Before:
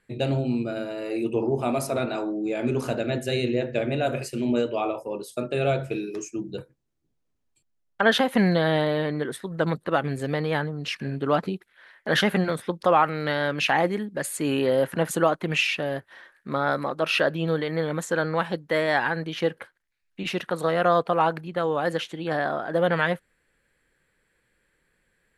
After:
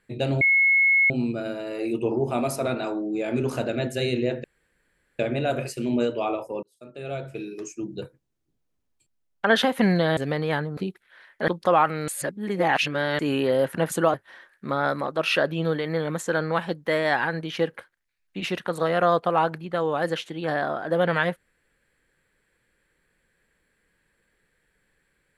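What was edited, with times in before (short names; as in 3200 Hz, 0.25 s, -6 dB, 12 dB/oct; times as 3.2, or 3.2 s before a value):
0.41 add tone 2180 Hz -15.5 dBFS 0.69 s
3.75 insert room tone 0.75 s
5.19–6.55 fade in
8.73–10.19 cut
10.79–11.43 cut
12.14–12.67 cut
13.27–14.38 reverse
15.33–15.97 cut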